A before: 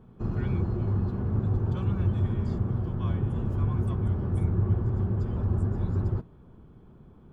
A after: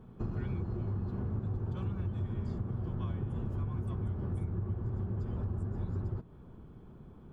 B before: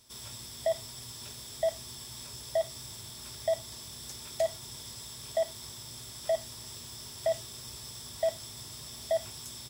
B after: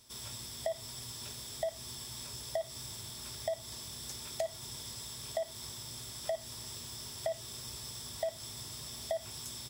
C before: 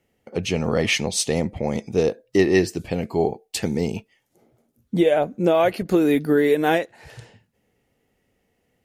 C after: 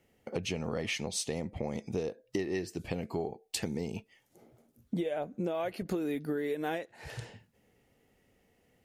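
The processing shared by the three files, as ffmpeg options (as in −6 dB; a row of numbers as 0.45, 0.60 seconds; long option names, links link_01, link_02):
-af "acompressor=threshold=-32dB:ratio=6"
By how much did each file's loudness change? −8.5, −4.0, −14.0 LU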